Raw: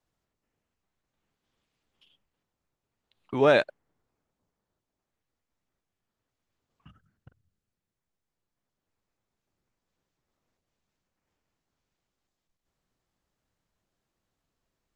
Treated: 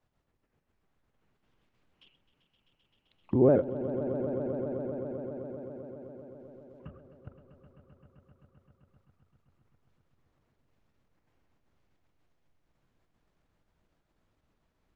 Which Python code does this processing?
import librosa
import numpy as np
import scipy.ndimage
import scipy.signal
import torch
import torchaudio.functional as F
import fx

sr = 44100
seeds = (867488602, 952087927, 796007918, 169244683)

p1 = fx.pitch_trill(x, sr, semitones=-2.0, every_ms=67)
p2 = fx.env_lowpass_down(p1, sr, base_hz=410.0, full_db=-46.0)
p3 = fx.low_shelf(p2, sr, hz=260.0, db=7.0)
p4 = fx.level_steps(p3, sr, step_db=16)
p5 = p3 + (p4 * 10.0 ** (0.5 / 20.0))
p6 = fx.bass_treble(p5, sr, bass_db=-3, treble_db=-10)
y = p6 + fx.echo_swell(p6, sr, ms=130, loudest=5, wet_db=-13.5, dry=0)